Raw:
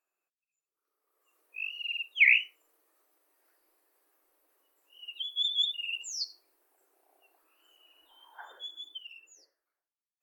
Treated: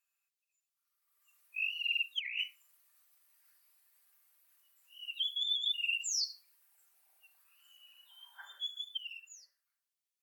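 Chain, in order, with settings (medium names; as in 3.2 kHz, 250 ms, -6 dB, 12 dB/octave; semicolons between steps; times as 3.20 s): Bessel high-pass 2.5 kHz, order 2; comb 5.1 ms, depth 50%; compressor with a negative ratio -34 dBFS, ratio -1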